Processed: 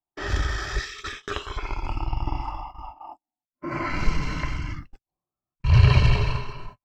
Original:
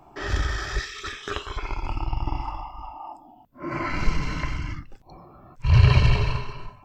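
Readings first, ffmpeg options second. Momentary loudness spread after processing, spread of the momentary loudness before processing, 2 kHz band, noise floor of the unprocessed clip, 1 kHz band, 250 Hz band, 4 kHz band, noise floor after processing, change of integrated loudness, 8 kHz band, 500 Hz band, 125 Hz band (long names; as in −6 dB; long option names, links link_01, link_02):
21 LU, 21 LU, 0.0 dB, −52 dBFS, 0.0 dB, 0.0 dB, 0.0 dB, below −85 dBFS, 0.0 dB, can't be measured, 0.0 dB, 0.0 dB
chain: -af "agate=range=-45dB:threshold=-37dB:ratio=16:detection=peak"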